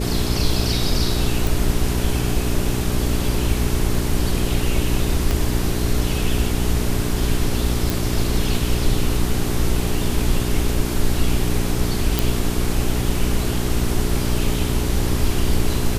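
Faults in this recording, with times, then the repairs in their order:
hum 60 Hz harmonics 7 -24 dBFS
1.47 s: pop
5.31 s: pop -7 dBFS
7.90 s: pop
12.19 s: pop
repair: de-click; de-hum 60 Hz, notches 7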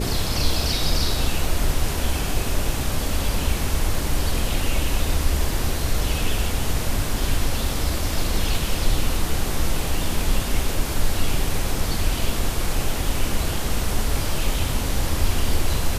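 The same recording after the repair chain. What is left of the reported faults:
5.31 s: pop

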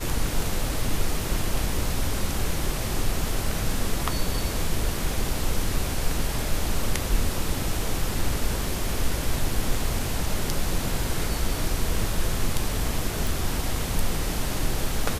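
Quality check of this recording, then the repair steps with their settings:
13.27 s: pop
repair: de-click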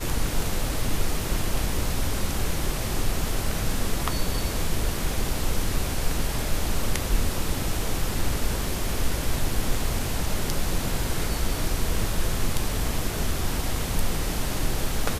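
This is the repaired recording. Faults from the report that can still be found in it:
nothing left

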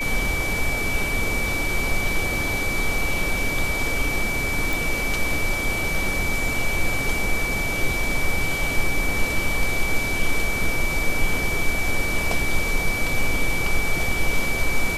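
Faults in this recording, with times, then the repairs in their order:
whine 2.3 kHz -25 dBFS
4.73 s: pop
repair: de-click; band-stop 2.3 kHz, Q 30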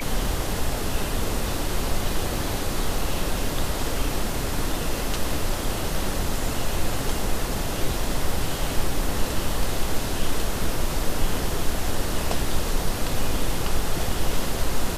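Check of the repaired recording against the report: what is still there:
nothing left

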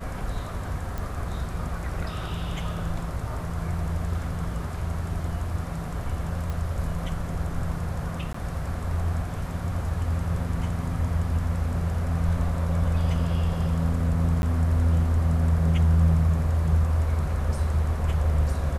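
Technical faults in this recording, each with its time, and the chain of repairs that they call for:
0.98 s: pop
6.50 s: pop
8.33–8.34 s: dropout 14 ms
14.42–14.43 s: dropout 11 ms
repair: de-click; interpolate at 8.33 s, 14 ms; interpolate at 14.42 s, 11 ms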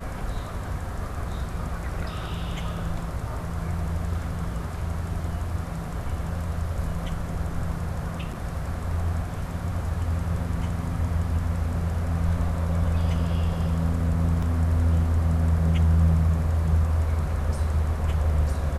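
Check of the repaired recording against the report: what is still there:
nothing left

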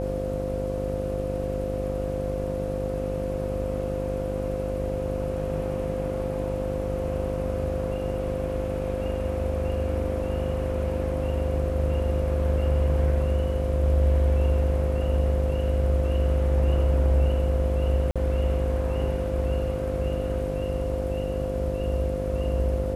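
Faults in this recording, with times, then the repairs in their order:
buzz 50 Hz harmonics 14 -31 dBFS
whine 520 Hz -29 dBFS
18.11–18.16 s: dropout 46 ms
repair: de-hum 50 Hz, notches 14; band-stop 520 Hz, Q 30; interpolate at 18.11 s, 46 ms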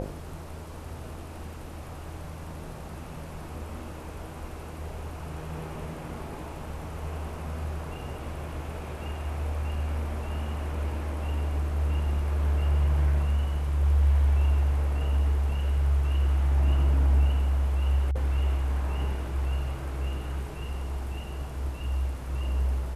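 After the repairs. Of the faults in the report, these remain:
nothing left

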